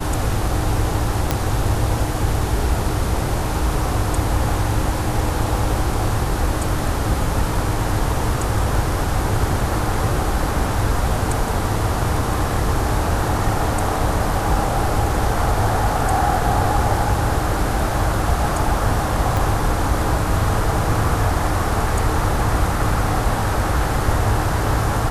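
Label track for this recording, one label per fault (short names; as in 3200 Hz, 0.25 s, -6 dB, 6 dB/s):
1.310000	1.310000	pop -3 dBFS
19.370000	19.370000	pop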